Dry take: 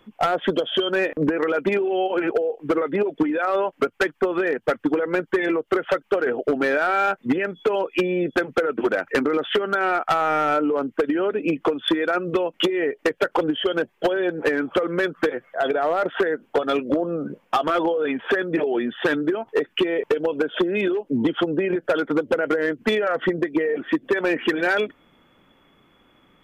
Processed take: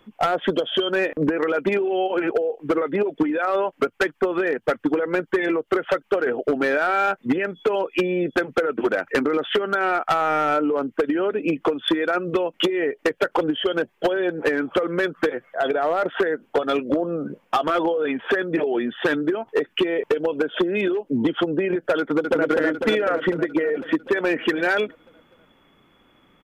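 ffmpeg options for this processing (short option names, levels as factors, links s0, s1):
-filter_complex "[0:a]asplit=2[s0][s1];[s1]afade=t=in:st=21.99:d=0.01,afade=t=out:st=22.49:d=0.01,aecho=0:1:250|500|750|1000|1250|1500|1750|2000|2250|2500|2750|3000:0.707946|0.495562|0.346893|0.242825|0.169978|0.118984|0.0832891|0.0583024|0.0408117|0.0285682|0.0199977|0.0139984[s2];[s0][s2]amix=inputs=2:normalize=0"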